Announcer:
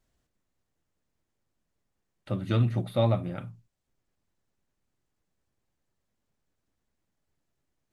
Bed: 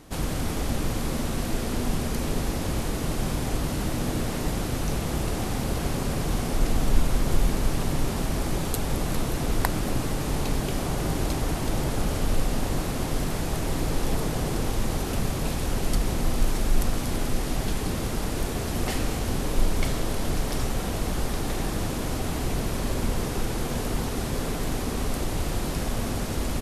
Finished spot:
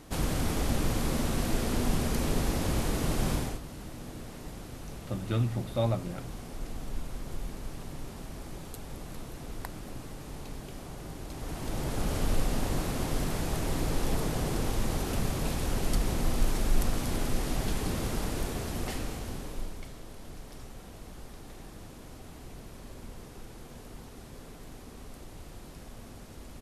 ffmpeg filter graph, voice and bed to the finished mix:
-filter_complex "[0:a]adelay=2800,volume=-4dB[a];[1:a]volume=10dB,afade=t=out:st=3.34:d=0.26:silence=0.211349,afade=t=in:st=11.28:d=0.91:silence=0.266073,afade=t=out:st=18.16:d=1.69:silence=0.177828[b];[a][b]amix=inputs=2:normalize=0"

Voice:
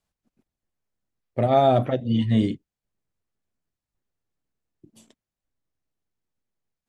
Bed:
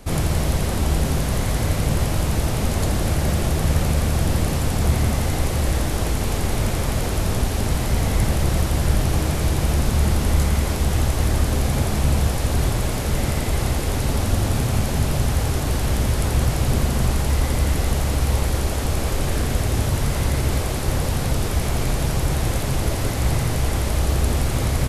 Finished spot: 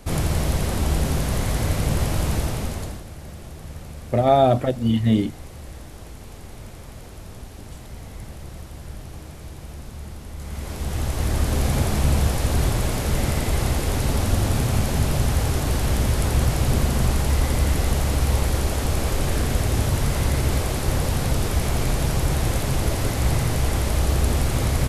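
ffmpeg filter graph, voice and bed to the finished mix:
-filter_complex "[0:a]adelay=2750,volume=2dB[a];[1:a]volume=15.5dB,afade=t=out:st=2.32:d=0.72:silence=0.158489,afade=t=in:st=10.37:d=1.3:silence=0.141254[b];[a][b]amix=inputs=2:normalize=0"

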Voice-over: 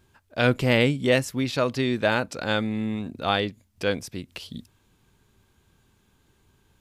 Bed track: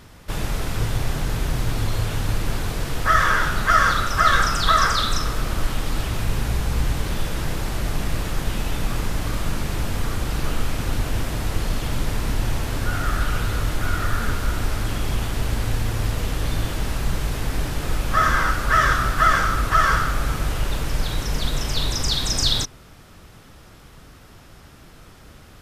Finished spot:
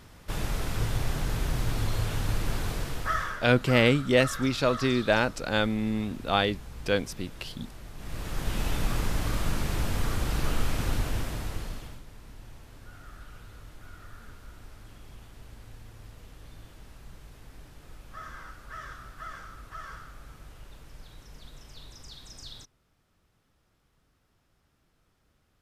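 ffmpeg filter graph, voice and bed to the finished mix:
-filter_complex "[0:a]adelay=3050,volume=-1dB[a];[1:a]volume=10.5dB,afade=t=out:st=2.72:d=0.67:silence=0.188365,afade=t=in:st=7.96:d=0.69:silence=0.158489,afade=t=out:st=10.85:d=1.17:silence=0.0944061[b];[a][b]amix=inputs=2:normalize=0"

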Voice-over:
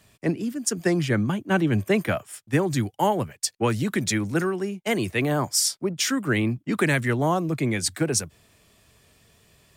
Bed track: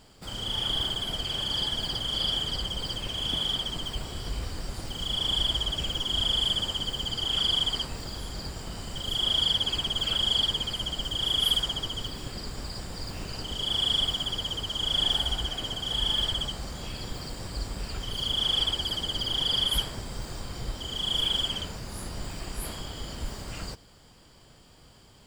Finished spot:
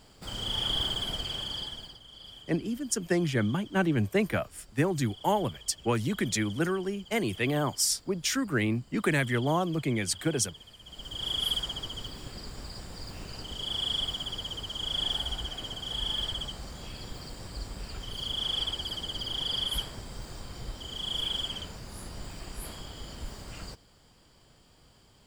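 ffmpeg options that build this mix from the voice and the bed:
-filter_complex "[0:a]adelay=2250,volume=-4.5dB[a];[1:a]volume=14.5dB,afade=t=out:st=1.03:d=0.95:silence=0.105925,afade=t=in:st=10.83:d=0.47:silence=0.16788[b];[a][b]amix=inputs=2:normalize=0"

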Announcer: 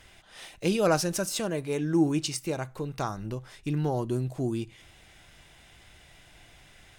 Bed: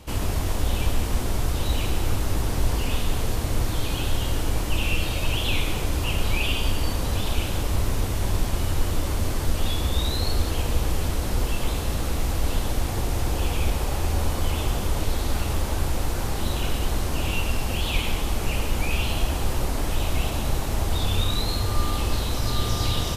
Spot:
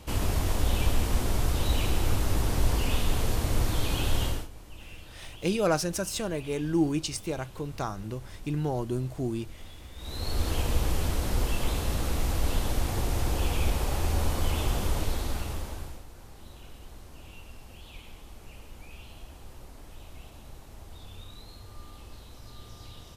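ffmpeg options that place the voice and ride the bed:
-filter_complex "[0:a]adelay=4800,volume=-1.5dB[a];[1:a]volume=17dB,afade=t=out:st=4.24:d=0.24:silence=0.1,afade=t=in:st=9.97:d=0.55:silence=0.112202,afade=t=out:st=14.88:d=1.16:silence=0.112202[b];[a][b]amix=inputs=2:normalize=0"

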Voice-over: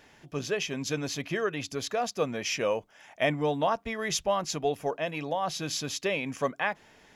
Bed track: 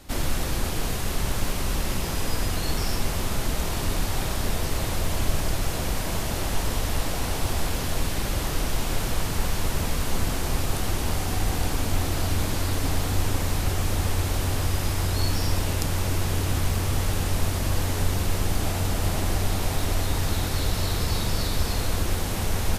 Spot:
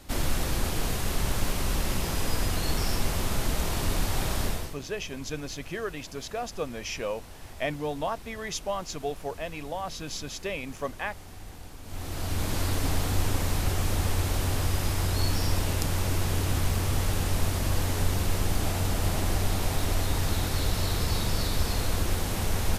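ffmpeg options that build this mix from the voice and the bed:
-filter_complex "[0:a]adelay=4400,volume=-4dB[a];[1:a]volume=15.5dB,afade=t=out:st=4.42:d=0.34:silence=0.133352,afade=t=in:st=11.83:d=0.77:silence=0.141254[b];[a][b]amix=inputs=2:normalize=0"

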